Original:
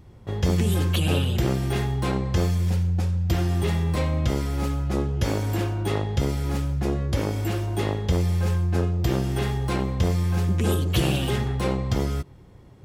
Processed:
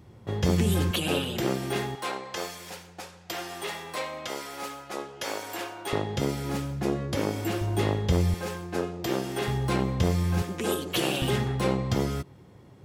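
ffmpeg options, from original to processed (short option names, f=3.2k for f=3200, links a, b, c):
-af "asetnsamples=n=441:p=0,asendcmd='0.91 highpass f 230;1.95 highpass f 630;5.93 highpass f 160;7.61 highpass f 71;8.34 highpass f 280;9.48 highpass f 92;10.42 highpass f 300;11.22 highpass f 110',highpass=95"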